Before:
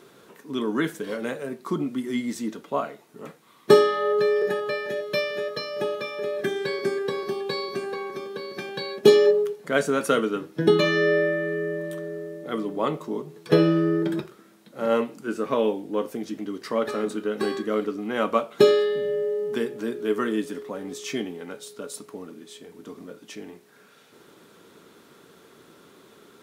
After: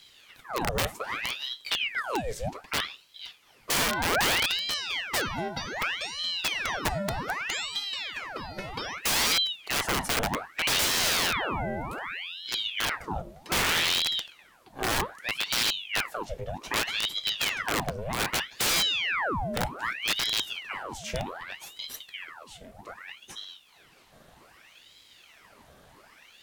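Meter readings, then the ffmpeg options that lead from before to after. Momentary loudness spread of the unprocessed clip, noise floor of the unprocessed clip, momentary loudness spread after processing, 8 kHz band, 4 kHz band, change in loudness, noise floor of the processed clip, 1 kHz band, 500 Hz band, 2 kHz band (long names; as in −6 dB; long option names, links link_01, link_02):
19 LU, −54 dBFS, 15 LU, +11.0 dB, +8.5 dB, −3.0 dB, −57 dBFS, 0.0 dB, −15.0 dB, +3.0 dB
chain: -af "aeval=exprs='(mod(7.5*val(0)+1,2)-1)/7.5':channel_layout=same,aeval=exprs='val(0)*sin(2*PI*1900*n/s+1900*0.9/0.64*sin(2*PI*0.64*n/s))':channel_layout=same"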